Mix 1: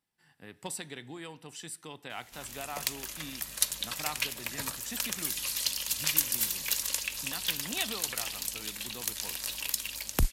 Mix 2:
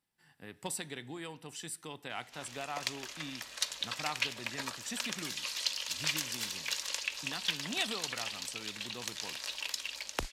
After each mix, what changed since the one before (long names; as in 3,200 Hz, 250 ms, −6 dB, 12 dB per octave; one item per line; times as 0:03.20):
background: add three-way crossover with the lows and the highs turned down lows −17 dB, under 360 Hz, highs −21 dB, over 6,600 Hz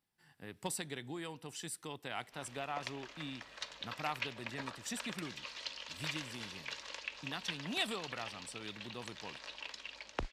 speech: send −10.0 dB
background: add head-to-tape spacing loss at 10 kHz 25 dB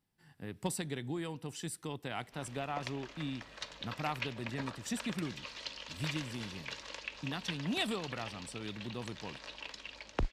master: add low-shelf EQ 380 Hz +9.5 dB